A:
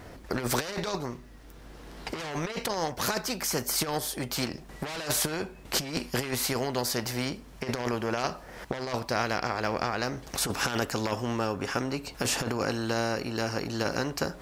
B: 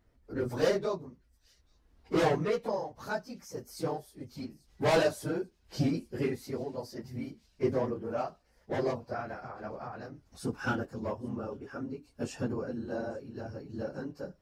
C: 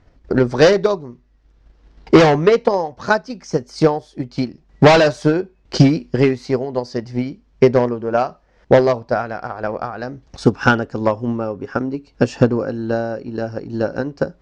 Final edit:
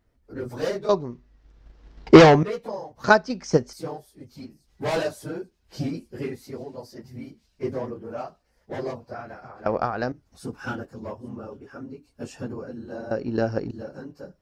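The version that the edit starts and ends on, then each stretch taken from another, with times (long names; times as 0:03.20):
B
0:00.89–0:02.43: punch in from C
0:03.04–0:03.73: punch in from C
0:09.66–0:10.12: punch in from C
0:13.11–0:13.71: punch in from C
not used: A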